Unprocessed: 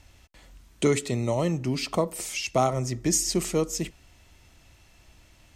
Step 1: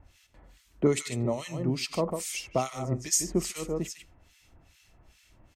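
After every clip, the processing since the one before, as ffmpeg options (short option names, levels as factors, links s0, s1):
-filter_complex "[0:a]aecho=1:1:149:0.447,acrossover=split=1500[s0][s1];[s0]aeval=exprs='val(0)*(1-1/2+1/2*cos(2*PI*2.4*n/s))':c=same[s2];[s1]aeval=exprs='val(0)*(1-1/2-1/2*cos(2*PI*2.4*n/s))':c=same[s3];[s2][s3]amix=inputs=2:normalize=0"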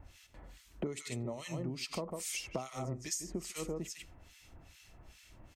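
-af "acompressor=threshold=0.0141:ratio=12,volume=1.26"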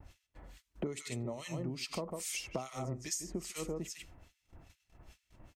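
-af "agate=range=0.0891:threshold=0.00158:ratio=16:detection=peak"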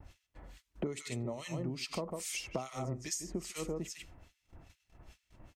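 -af "highshelf=f=8800:g=-4,volume=1.12"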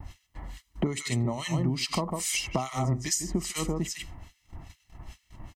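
-af "aecho=1:1:1:0.53,volume=2.82"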